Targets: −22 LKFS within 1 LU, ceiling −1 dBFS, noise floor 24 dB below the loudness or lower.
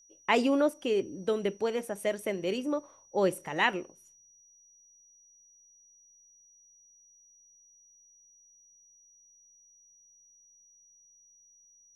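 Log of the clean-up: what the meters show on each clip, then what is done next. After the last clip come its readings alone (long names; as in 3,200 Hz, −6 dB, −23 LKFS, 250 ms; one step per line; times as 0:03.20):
interfering tone 5,800 Hz; level of the tone −58 dBFS; integrated loudness −30.0 LKFS; sample peak −11.0 dBFS; target loudness −22.0 LKFS
→ notch filter 5,800 Hz, Q 30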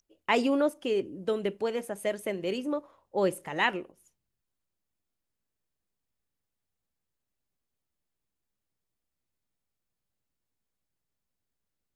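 interfering tone none found; integrated loudness −30.0 LKFS; sample peak −11.0 dBFS; target loudness −22.0 LKFS
→ level +8 dB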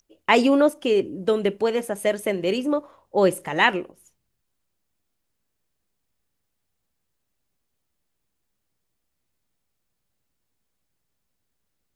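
integrated loudness −22.0 LKFS; sample peak −3.0 dBFS; background noise floor −77 dBFS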